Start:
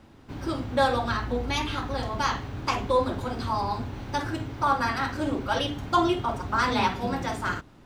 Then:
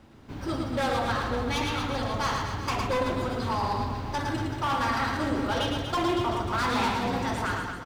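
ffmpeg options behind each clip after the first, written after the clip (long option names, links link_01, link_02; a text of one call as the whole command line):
ffmpeg -i in.wav -filter_complex "[0:a]volume=23.5dB,asoftclip=hard,volume=-23.5dB,asplit=2[link_01][link_02];[link_02]aecho=0:1:110|236.5|382|549.3|741.7:0.631|0.398|0.251|0.158|0.1[link_03];[link_01][link_03]amix=inputs=2:normalize=0,volume=-1dB" out.wav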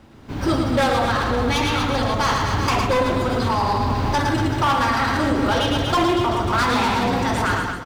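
ffmpeg -i in.wav -af "dynaudnorm=framelen=120:gausssize=7:maxgain=9.5dB,alimiter=limit=-17.5dB:level=0:latency=1:release=187,volume=5.5dB" out.wav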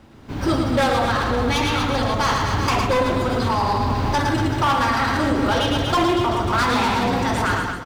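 ffmpeg -i in.wav -af anull out.wav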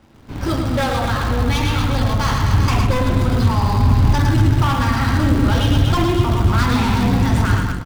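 ffmpeg -i in.wav -filter_complex "[0:a]asubboost=boost=5:cutoff=220,asplit=2[link_01][link_02];[link_02]acrusher=bits=4:dc=4:mix=0:aa=0.000001,volume=-10dB[link_03];[link_01][link_03]amix=inputs=2:normalize=0,volume=-3.5dB" out.wav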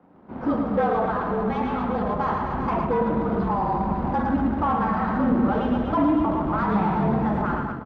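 ffmpeg -i in.wav -af "asuperpass=centerf=550:order=4:qfactor=0.57,afreqshift=-46" out.wav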